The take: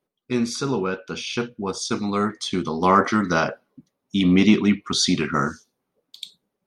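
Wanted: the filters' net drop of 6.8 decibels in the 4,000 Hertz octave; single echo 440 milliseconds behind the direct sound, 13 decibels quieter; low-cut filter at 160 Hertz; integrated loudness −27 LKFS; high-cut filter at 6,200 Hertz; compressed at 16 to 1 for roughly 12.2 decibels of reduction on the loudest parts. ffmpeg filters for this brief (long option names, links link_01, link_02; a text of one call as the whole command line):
ffmpeg -i in.wav -af "highpass=160,lowpass=6200,equalizer=frequency=4000:width_type=o:gain=-7.5,acompressor=threshold=-23dB:ratio=16,aecho=1:1:440:0.224,volume=2.5dB" out.wav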